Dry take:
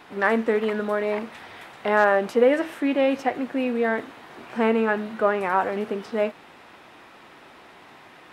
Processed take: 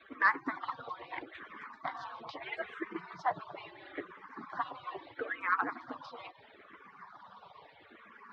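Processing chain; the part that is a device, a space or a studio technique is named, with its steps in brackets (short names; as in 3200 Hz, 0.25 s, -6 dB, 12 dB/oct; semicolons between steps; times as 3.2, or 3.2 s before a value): median-filter separation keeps percussive; barber-pole phaser into a guitar amplifier (endless phaser -0.76 Hz; soft clip -17.5 dBFS, distortion -16 dB; speaker cabinet 90–4100 Hz, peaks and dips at 180 Hz +5 dB, 520 Hz -6 dB, 1100 Hz +8 dB, 2700 Hz -8 dB)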